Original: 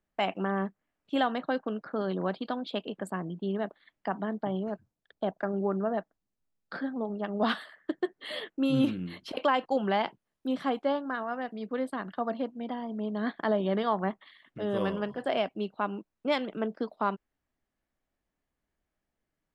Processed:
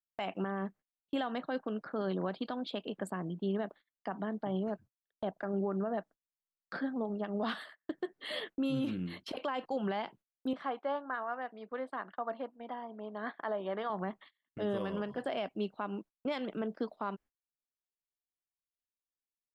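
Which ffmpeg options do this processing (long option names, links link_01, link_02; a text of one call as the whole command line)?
ffmpeg -i in.wav -filter_complex "[0:a]asettb=1/sr,asplit=3[link_01][link_02][link_03];[link_01]atrim=end=10.534[link_04];[link_02]atrim=start=10.53:end=13.9,asetpts=PTS-STARTPTS,afade=type=in:duration=0.004:curve=qsin,afade=type=out:start_time=3.366:duration=0.004:curve=qsin,bandpass=frequency=1100:width_type=q:width=0.81[link_05];[link_03]atrim=start=13.896[link_06];[link_04][link_05]acrossfade=duration=0.004:curve1=hsin:curve2=qsin[link_07];[link_07][link_06]acrossfade=duration=0.004:curve1=qsin:curve2=hsin,agate=range=-27dB:threshold=-48dB:ratio=16:detection=peak,alimiter=limit=-24dB:level=0:latency=1:release=96,volume=-1.5dB" out.wav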